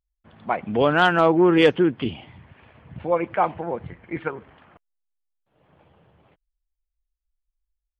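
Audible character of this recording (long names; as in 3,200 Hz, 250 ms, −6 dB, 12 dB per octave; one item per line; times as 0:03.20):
background noise floor −83 dBFS
spectral slope −4.0 dB per octave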